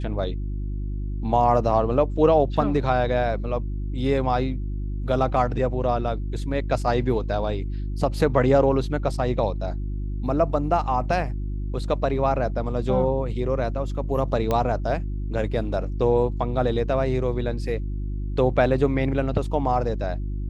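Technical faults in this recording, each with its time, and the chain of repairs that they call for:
hum 50 Hz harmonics 7 -28 dBFS
14.51 pop -11 dBFS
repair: de-click; de-hum 50 Hz, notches 7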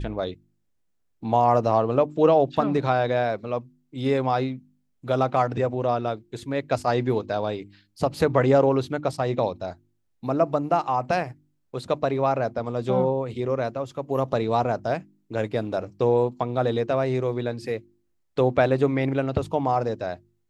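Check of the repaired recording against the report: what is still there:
none

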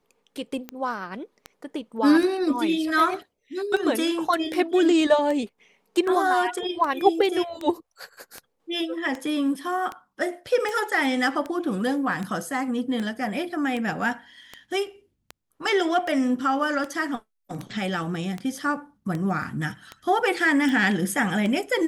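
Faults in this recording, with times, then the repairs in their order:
tick 78 rpm -18 dBFS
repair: de-click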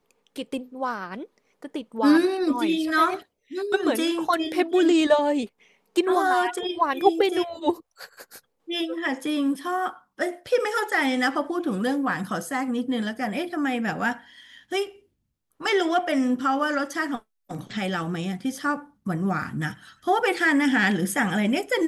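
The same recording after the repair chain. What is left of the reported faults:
none

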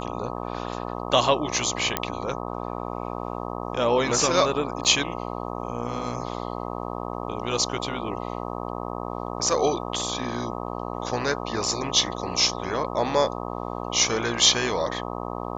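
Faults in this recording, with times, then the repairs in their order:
buzz 60 Hz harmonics 21 -32 dBFS
1.97 pop -6 dBFS
4.84–4.85 gap 7.9 ms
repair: de-click; de-hum 60 Hz, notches 21; interpolate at 4.84, 7.9 ms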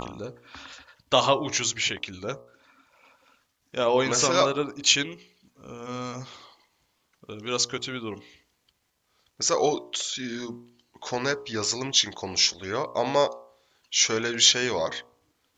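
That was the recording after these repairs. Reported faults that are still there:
none

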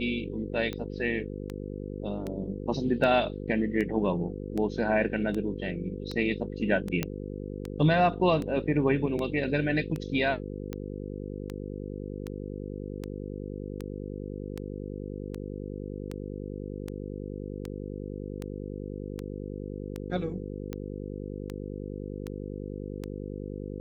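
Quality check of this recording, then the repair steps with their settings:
buzz 50 Hz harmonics 10 -37 dBFS
tick 78 rpm -21 dBFS
7.03 pop -13 dBFS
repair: de-click; de-hum 50 Hz, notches 10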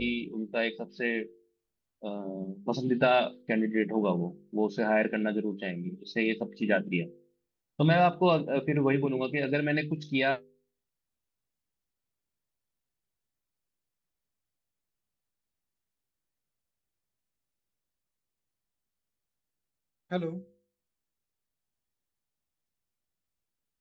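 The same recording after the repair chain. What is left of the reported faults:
none

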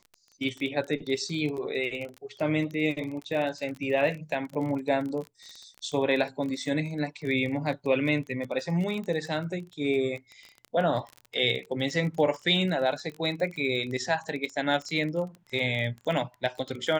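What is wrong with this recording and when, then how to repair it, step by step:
crackle 28/s -33 dBFS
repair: de-click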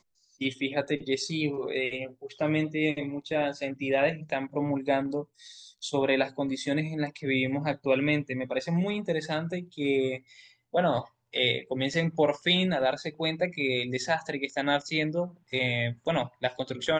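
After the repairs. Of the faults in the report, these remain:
none

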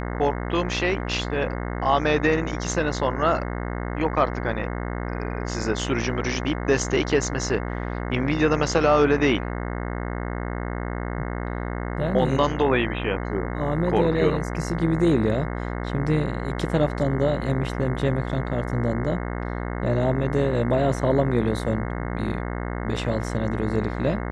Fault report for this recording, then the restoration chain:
buzz 60 Hz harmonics 36 -29 dBFS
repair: de-hum 60 Hz, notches 36

